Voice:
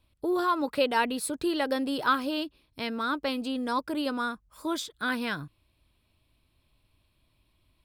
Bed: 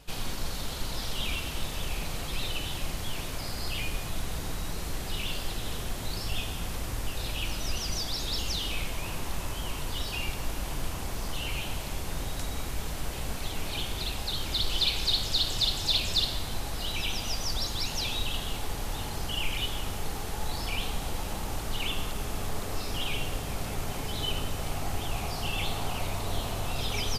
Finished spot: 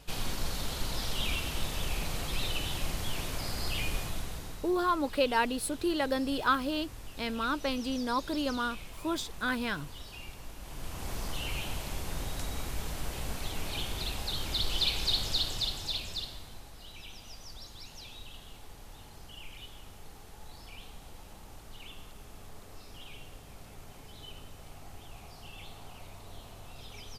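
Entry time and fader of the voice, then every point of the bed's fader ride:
4.40 s, -2.0 dB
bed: 3.99 s -0.5 dB
4.77 s -12.5 dB
10.58 s -12.5 dB
11.11 s -2.5 dB
15.29 s -2.5 dB
16.73 s -16 dB

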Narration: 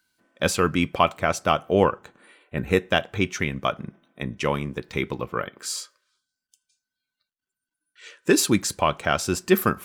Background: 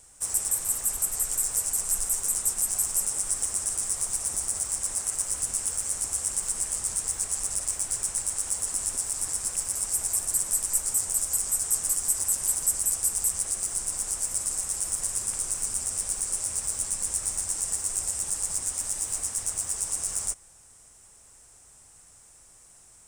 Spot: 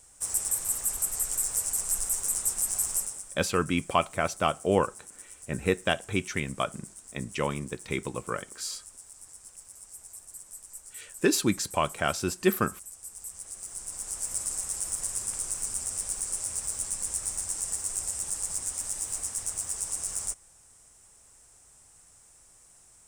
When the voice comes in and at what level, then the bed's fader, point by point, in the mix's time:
2.95 s, -5.0 dB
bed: 2.96 s -2 dB
3.37 s -19 dB
12.92 s -19 dB
14.33 s -3 dB

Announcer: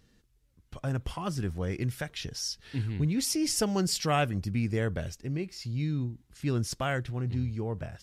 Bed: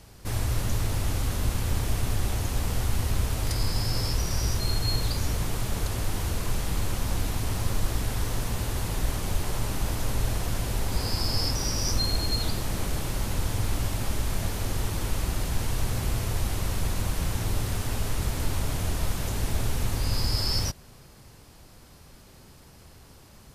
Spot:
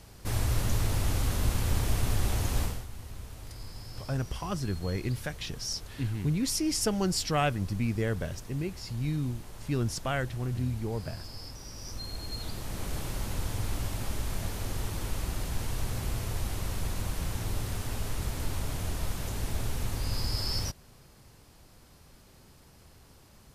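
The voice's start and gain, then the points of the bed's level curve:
3.25 s, -0.5 dB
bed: 2.63 s -1 dB
2.87 s -16.5 dB
11.65 s -16.5 dB
12.97 s -5 dB

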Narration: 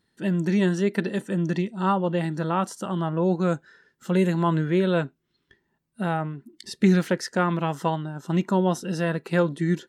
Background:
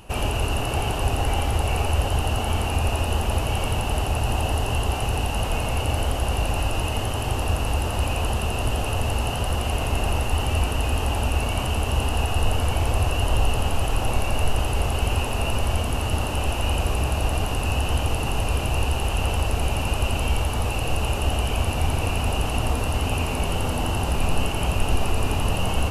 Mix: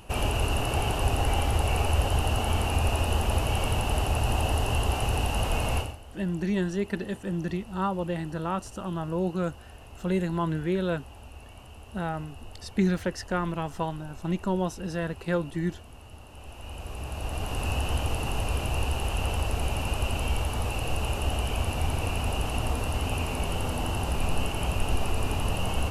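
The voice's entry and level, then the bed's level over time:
5.95 s, -5.5 dB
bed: 5.78 s -2.5 dB
5.99 s -23 dB
16.25 s -23 dB
17.63 s -5 dB

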